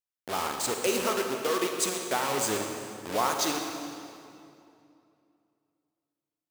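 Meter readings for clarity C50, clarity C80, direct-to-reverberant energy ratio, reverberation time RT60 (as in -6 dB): 3.5 dB, 4.5 dB, 3.0 dB, 2.6 s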